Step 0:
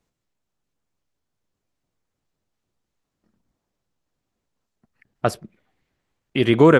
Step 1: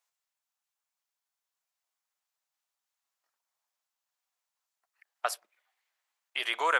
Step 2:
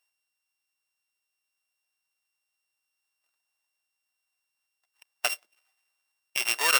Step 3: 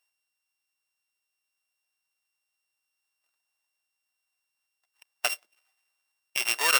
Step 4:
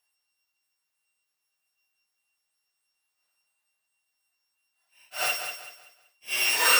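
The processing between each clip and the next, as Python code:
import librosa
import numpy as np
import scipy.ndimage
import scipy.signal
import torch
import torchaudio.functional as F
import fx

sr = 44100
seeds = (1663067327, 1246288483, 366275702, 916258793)

y1 = scipy.signal.sosfilt(scipy.signal.butter(4, 770.0, 'highpass', fs=sr, output='sos'), x)
y1 = fx.high_shelf(y1, sr, hz=7100.0, db=8.5)
y1 = y1 * librosa.db_to_amplitude(-5.0)
y2 = np.r_[np.sort(y1[:len(y1) // 16 * 16].reshape(-1, 16), axis=1).ravel(), y1[len(y1) // 16 * 16:]]
y2 = fx.tilt_shelf(y2, sr, db=-4.5, hz=1500.0)
y2 = y2 * librosa.db_to_amplitude(2.0)
y3 = y2
y4 = fx.phase_scramble(y3, sr, seeds[0], window_ms=200)
y4 = fx.echo_feedback(y4, sr, ms=190, feedback_pct=33, wet_db=-8.0)
y4 = y4 * librosa.db_to_amplitude(3.0)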